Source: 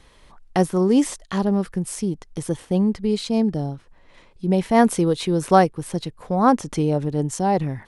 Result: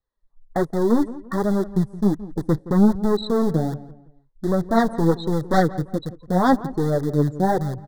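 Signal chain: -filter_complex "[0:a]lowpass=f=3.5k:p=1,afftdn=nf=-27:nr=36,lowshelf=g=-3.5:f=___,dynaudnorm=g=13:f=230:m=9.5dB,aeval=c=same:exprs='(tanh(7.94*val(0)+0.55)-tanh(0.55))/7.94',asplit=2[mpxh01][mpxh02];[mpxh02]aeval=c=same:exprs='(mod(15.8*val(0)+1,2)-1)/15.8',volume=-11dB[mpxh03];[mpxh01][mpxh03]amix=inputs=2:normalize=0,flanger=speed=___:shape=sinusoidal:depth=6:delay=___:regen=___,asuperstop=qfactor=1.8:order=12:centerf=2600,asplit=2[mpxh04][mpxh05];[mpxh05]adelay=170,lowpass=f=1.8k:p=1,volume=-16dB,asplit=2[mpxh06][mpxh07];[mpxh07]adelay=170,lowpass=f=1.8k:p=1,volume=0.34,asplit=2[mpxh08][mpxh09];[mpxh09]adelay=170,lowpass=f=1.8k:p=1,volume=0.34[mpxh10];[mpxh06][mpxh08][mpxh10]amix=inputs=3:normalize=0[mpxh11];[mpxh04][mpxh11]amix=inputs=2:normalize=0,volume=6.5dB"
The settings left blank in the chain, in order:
93, 1.3, 1.4, 24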